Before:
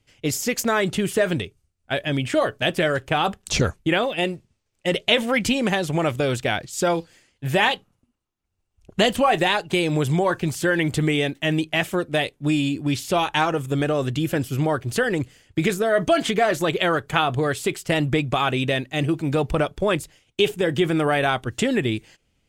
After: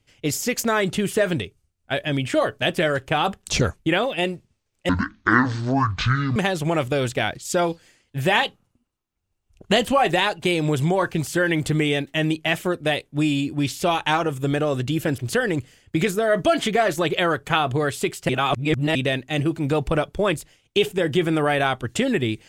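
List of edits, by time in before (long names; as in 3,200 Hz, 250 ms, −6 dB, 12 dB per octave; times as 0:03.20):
0:04.89–0:05.64: play speed 51%
0:14.46–0:14.81: remove
0:17.92–0:18.58: reverse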